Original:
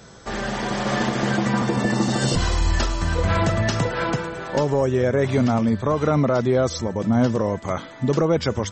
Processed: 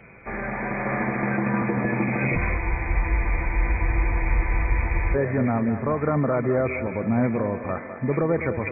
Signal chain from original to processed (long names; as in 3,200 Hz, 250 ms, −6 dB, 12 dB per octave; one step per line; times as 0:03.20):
hearing-aid frequency compression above 1,700 Hz 4 to 1
feedback echo with a high-pass in the loop 205 ms, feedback 60%, high-pass 180 Hz, level −10 dB
frozen spectrum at 0:02.61, 2.54 s
level −3.5 dB